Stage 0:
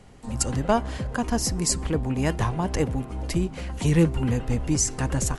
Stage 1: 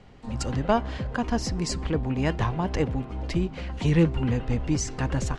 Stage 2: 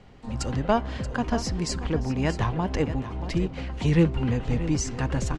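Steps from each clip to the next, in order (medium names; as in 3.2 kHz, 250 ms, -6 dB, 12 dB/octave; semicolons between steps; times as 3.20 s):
Chebyshev low-pass 3.9 kHz, order 2
delay 630 ms -12.5 dB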